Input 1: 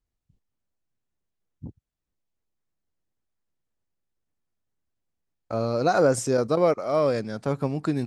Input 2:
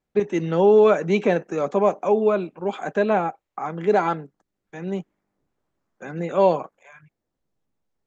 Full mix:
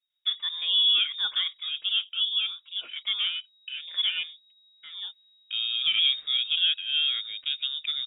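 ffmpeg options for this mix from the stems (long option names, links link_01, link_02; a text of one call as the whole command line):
ffmpeg -i stem1.wav -i stem2.wav -filter_complex "[0:a]bandreject=frequency=2900:width=6.1,volume=-3dB,asplit=2[link_01][link_02];[1:a]adelay=100,volume=-7.5dB[link_03];[link_02]apad=whole_len=360139[link_04];[link_03][link_04]sidechaincompress=threshold=-36dB:ratio=10:attack=37:release=1180[link_05];[link_01][link_05]amix=inputs=2:normalize=0,asubboost=boost=10:cutoff=57,lowpass=frequency=3200:width_type=q:width=0.5098,lowpass=frequency=3200:width_type=q:width=0.6013,lowpass=frequency=3200:width_type=q:width=0.9,lowpass=frequency=3200:width_type=q:width=2.563,afreqshift=-3800" out.wav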